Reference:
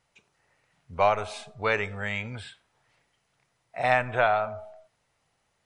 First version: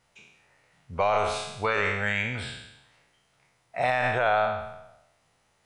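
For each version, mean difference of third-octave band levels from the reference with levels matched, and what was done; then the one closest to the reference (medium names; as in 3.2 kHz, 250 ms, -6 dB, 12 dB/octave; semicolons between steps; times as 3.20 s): 6.0 dB: spectral sustain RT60 0.88 s; peak limiter -16 dBFS, peak gain reduction 9 dB; trim +2.5 dB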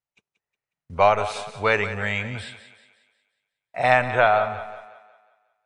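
3.0 dB: gate -54 dBFS, range -28 dB; thinning echo 181 ms, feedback 45%, high-pass 230 Hz, level -12.5 dB; trim +5 dB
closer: second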